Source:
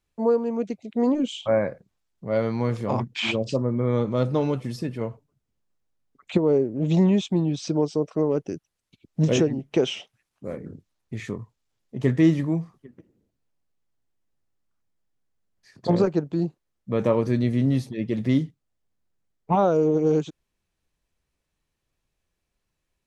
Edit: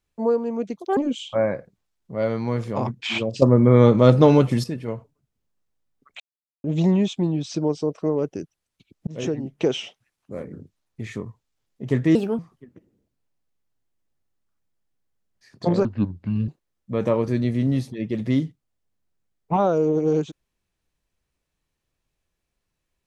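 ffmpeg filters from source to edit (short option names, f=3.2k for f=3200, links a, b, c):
-filter_complex "[0:a]asplit=12[a][b][c][d][e][f][g][h][i][j][k][l];[a]atrim=end=0.764[m];[b]atrim=start=0.76:end=1.1,asetpts=PTS-STARTPTS,asetrate=71442,aresample=44100[n];[c]atrim=start=1.096:end=3.552[o];[d]atrim=start=3.548:end=4.772,asetpts=PTS-STARTPTS,volume=9.5dB[p];[e]atrim=start=4.768:end=6.33,asetpts=PTS-STARTPTS,afade=t=out:st=1.558:d=0.004:c=hsin[q];[f]atrim=start=6.33:end=6.77,asetpts=PTS-STARTPTS,volume=0[r];[g]atrim=start=6.77:end=9.2,asetpts=PTS-STARTPTS,afade=t=in:d=0.004:c=hsin,afade=t=out:st=2.426:d=0.004:c=hsin[s];[h]atrim=start=9.2:end=12.284,asetpts=PTS-STARTPTS,afade=t=in:d=0.57:c=qsin[t];[i]atrim=start=12.28:end=12.61,asetpts=PTS-STARTPTS,asetrate=61299,aresample=44100[u];[j]atrim=start=12.606:end=16.074[v];[k]atrim=start=16.07:end=16.47,asetpts=PTS-STARTPTS,asetrate=27783,aresample=44100[w];[l]atrim=start=16.466[x];[m][n]acrossfade=d=0.004:c1=hsin:c2=hsin[y];[y][o]acrossfade=d=0.004:c1=hsin:c2=hsin[z];[z][p]acrossfade=d=0.004:c1=hsin:c2=hsin[aa];[q][r][s][t]concat=n=4:v=0:a=1[ab];[aa][ab]acrossfade=d=0.004:c1=hsin:c2=hsin[ac];[ac][u]acrossfade=d=0.004:c1=hsin:c2=hsin[ad];[ad][v]acrossfade=d=0.004:c1=hsin:c2=hsin[ae];[ae][w]acrossfade=d=0.004:c1=hsin:c2=hsin[af];[af][x]acrossfade=d=0.004:c1=hsin:c2=hsin"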